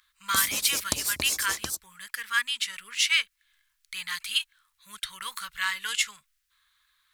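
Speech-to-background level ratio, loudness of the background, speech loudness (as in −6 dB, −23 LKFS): 0.0 dB, −28.5 LKFS, −28.5 LKFS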